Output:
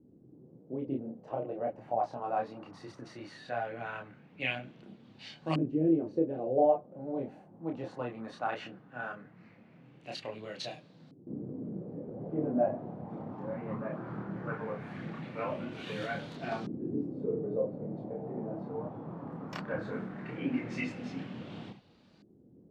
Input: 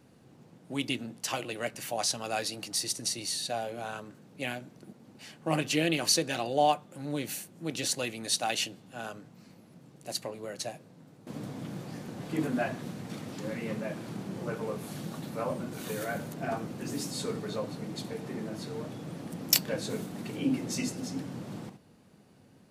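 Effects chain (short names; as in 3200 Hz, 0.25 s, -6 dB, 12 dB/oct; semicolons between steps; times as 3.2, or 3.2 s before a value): chorus voices 2, 0.53 Hz, delay 28 ms, depth 3.8 ms; LFO low-pass saw up 0.18 Hz 320–4400 Hz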